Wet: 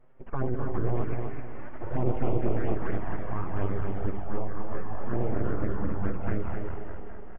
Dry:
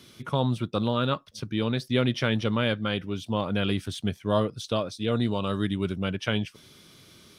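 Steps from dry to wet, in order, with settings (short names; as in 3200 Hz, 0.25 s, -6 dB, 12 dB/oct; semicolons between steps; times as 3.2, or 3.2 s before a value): regenerating reverse delay 0.103 s, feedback 83%, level -6 dB; 1.03–1.81 HPF 600 Hz 24 dB/oct; full-wave rectifier; envelope flanger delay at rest 8.5 ms, full sweep at -18.5 dBFS; Gaussian blur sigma 5.7 samples; feedback echo 0.257 s, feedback 29%, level -5 dB; 4.23–5.09 detuned doubles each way 50 cents -> 33 cents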